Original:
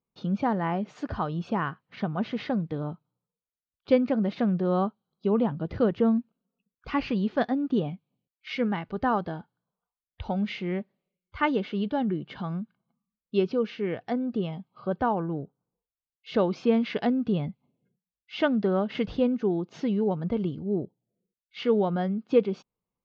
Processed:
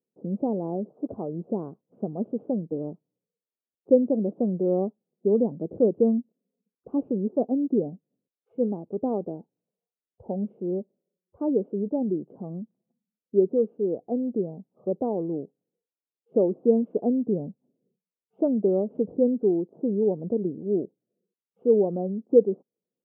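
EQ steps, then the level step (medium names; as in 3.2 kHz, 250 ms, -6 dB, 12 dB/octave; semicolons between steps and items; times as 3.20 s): high-pass 310 Hz 12 dB/octave; inverse Chebyshev low-pass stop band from 1.8 kHz, stop band 60 dB; +6.5 dB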